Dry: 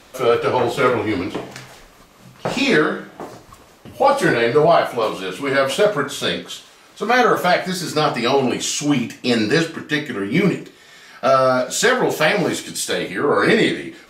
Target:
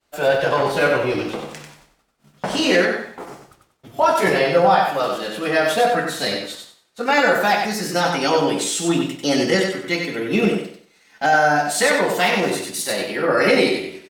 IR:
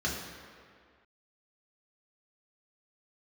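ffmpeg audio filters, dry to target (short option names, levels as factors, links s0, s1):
-af "asetrate=50951,aresample=44100,atempo=0.865537,agate=range=0.0224:threshold=0.0178:ratio=3:detection=peak,aecho=1:1:94|188|282|376:0.562|0.152|0.041|0.0111,volume=0.794"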